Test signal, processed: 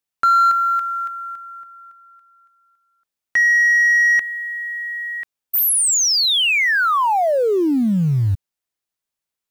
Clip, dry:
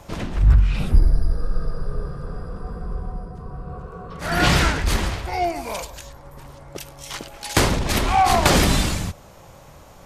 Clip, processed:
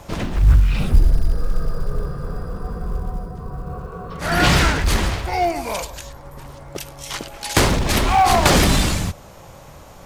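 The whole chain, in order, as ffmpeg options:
-filter_complex "[0:a]asplit=2[a][b];[b]asoftclip=type=hard:threshold=-19.5dB,volume=-5.5dB[c];[a][c]amix=inputs=2:normalize=0,acrusher=bits=9:mode=log:mix=0:aa=0.000001"

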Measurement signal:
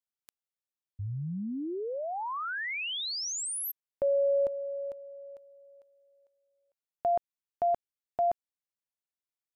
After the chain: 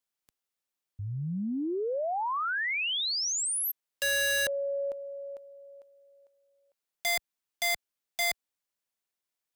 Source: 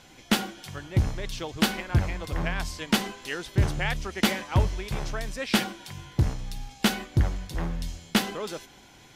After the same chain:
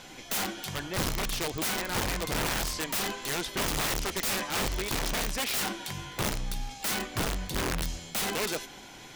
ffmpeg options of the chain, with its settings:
-filter_complex "[0:a]equalizer=f=76:t=o:w=1.8:g=-7.5,asplit=2[a][b];[b]acompressor=threshold=-37dB:ratio=16:attack=14:release=32:knee=6:detection=peak,volume=2.5dB[c];[a][c]amix=inputs=2:normalize=0,aeval=exprs='(mod(13.3*val(0)+1,2)-1)/13.3':c=same,volume=-1.5dB"

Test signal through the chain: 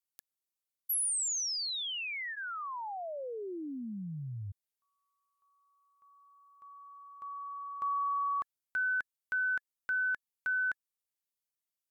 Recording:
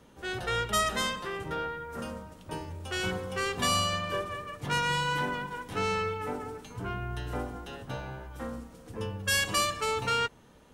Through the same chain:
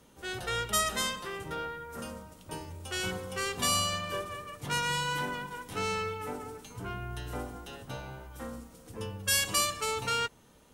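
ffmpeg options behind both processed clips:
-af "aemphasis=mode=production:type=cd,bandreject=f=1.7k:w=25,volume=-3dB"

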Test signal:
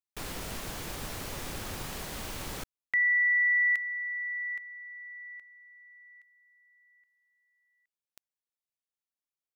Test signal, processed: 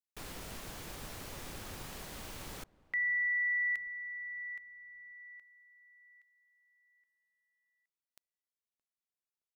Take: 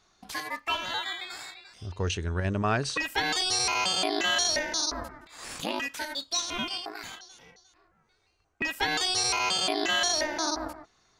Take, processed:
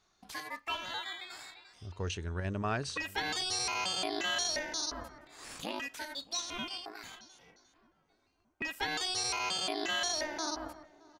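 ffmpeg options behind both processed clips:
-filter_complex "[0:a]asplit=2[a][b];[b]adelay=620,lowpass=f=1.1k:p=1,volume=-21dB,asplit=2[c][d];[d]adelay=620,lowpass=f=1.1k:p=1,volume=0.53,asplit=2[e][f];[f]adelay=620,lowpass=f=1.1k:p=1,volume=0.53,asplit=2[g][h];[h]adelay=620,lowpass=f=1.1k:p=1,volume=0.53[i];[a][c][e][g][i]amix=inputs=5:normalize=0,volume=-7dB"

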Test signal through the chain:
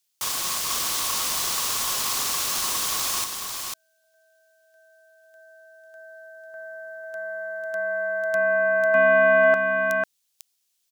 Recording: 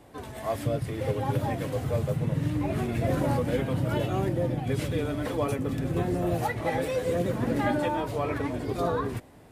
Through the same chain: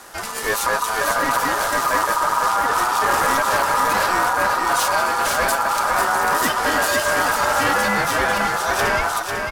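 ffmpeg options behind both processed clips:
-filter_complex "[0:a]highshelf=f=3.2k:t=q:w=1.5:g=11.5,aeval=exprs='0.251*(cos(1*acos(clip(val(0)/0.251,-1,1)))-cos(1*PI/2))+0.112*(cos(5*acos(clip(val(0)/0.251,-1,1)))-cos(5*PI/2))+0.0631*(cos(6*acos(clip(val(0)/0.251,-1,1)))-cos(6*PI/2))':c=same,acontrast=81,aeval=exprs='val(0)*sin(2*PI*1100*n/s)':c=same,asplit=2[a][b];[b]aecho=0:1:497:0.562[c];[a][c]amix=inputs=2:normalize=0,volume=-4.5dB"

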